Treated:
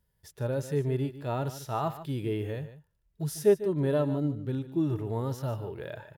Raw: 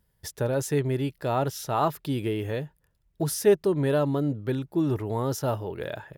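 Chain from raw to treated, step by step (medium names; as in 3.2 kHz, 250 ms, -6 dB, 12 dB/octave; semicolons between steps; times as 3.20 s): harmonic-percussive split percussive -12 dB; delay 148 ms -13.5 dB; trim -2 dB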